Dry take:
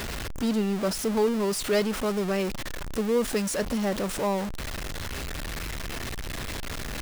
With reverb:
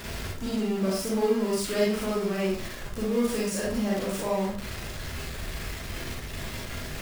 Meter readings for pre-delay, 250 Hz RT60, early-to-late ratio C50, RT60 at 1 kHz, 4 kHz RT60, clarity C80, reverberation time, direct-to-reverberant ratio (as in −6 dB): 33 ms, 0.50 s, 0.0 dB, 0.45 s, 0.40 s, 6.5 dB, 0.45 s, −5.5 dB